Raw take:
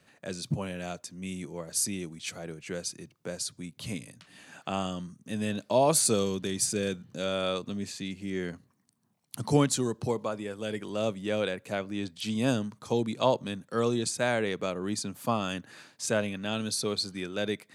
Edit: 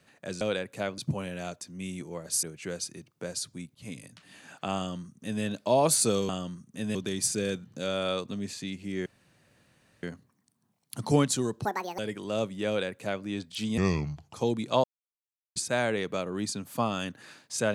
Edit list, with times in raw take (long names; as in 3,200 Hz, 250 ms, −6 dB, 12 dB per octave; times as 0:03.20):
0:01.86–0:02.47: remove
0:03.79–0:04.04: fade in
0:04.81–0:05.47: duplicate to 0:06.33
0:08.44: splice in room tone 0.97 s
0:10.06–0:10.64: play speed 173%
0:11.33–0:11.90: duplicate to 0:00.41
0:12.43–0:12.83: play speed 71%
0:13.33–0:14.05: silence